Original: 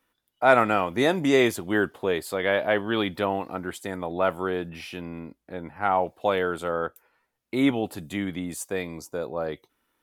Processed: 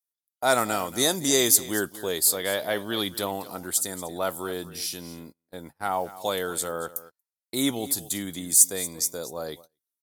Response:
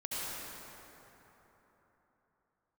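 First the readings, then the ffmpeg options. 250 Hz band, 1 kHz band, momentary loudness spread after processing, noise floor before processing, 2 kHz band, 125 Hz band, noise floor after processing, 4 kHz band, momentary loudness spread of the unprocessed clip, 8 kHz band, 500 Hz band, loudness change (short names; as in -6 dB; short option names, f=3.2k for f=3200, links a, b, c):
-4.5 dB, -4.5 dB, 17 LU, -78 dBFS, -4.5 dB, -4.5 dB, under -85 dBFS, +6.5 dB, 15 LU, +19.5 dB, -4.5 dB, +1.0 dB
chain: -filter_complex "[0:a]asplit=2[a][b];[b]aecho=0:1:232:0.15[c];[a][c]amix=inputs=2:normalize=0,aexciter=amount=9.8:drive=7.4:freq=4k,agate=range=-29dB:threshold=-38dB:ratio=16:detection=peak,volume=-4.5dB"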